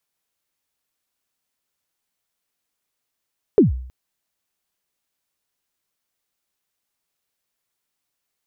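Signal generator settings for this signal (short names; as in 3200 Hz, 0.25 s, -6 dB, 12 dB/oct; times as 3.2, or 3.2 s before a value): kick drum length 0.32 s, from 470 Hz, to 63 Hz, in 0.14 s, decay 0.60 s, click off, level -6 dB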